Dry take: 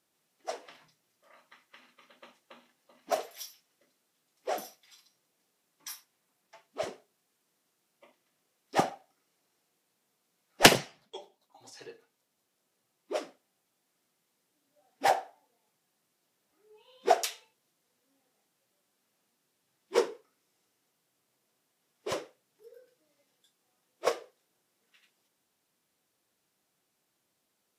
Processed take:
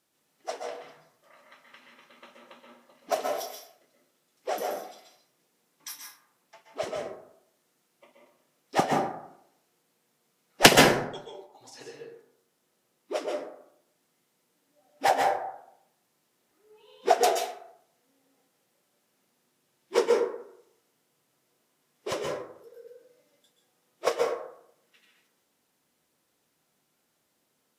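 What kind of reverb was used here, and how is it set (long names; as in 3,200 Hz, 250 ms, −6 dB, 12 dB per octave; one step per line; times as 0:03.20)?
dense smooth reverb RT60 0.71 s, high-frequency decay 0.4×, pre-delay 115 ms, DRR 0.5 dB
level +2 dB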